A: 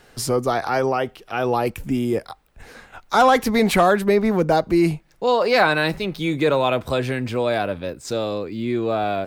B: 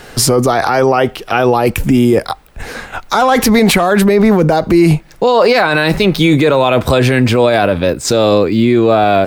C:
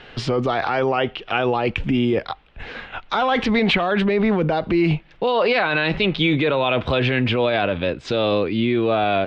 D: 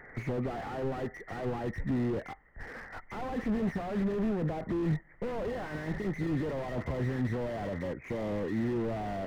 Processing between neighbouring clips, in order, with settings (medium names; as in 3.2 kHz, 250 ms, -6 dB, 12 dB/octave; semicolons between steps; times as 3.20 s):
in parallel at 0 dB: compressor with a negative ratio -24 dBFS; on the sum: loudness maximiser +9.5 dB; trim -1 dB
four-pole ladder low-pass 3.6 kHz, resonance 50%
knee-point frequency compression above 1.7 kHz 4:1; slew-rate limiter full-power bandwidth 31 Hz; trim -8.5 dB